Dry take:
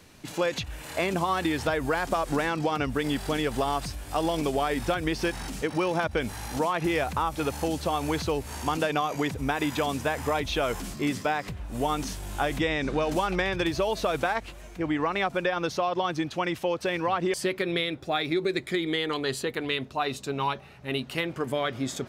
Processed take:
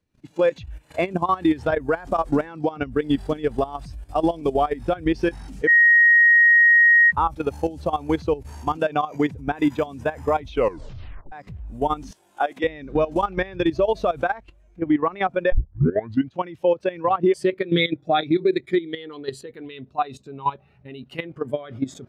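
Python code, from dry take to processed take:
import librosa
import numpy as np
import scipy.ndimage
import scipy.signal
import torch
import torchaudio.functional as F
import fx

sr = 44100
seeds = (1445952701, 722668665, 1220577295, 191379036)

y = fx.highpass(x, sr, hz=330.0, slope=12, at=(12.11, 12.64))
y = fx.comb(y, sr, ms=6.5, depth=0.8, at=(17.7, 18.41), fade=0.02)
y = fx.edit(y, sr, fx.bleep(start_s=5.67, length_s=1.45, hz=1880.0, db=-22.5),
    fx.tape_stop(start_s=10.5, length_s=0.82),
    fx.tape_start(start_s=15.52, length_s=0.81), tone=tone)
y = fx.low_shelf(y, sr, hz=180.0, db=2.0)
y = fx.level_steps(y, sr, step_db=13)
y = fx.spectral_expand(y, sr, expansion=1.5)
y = y * librosa.db_to_amplitude(6.0)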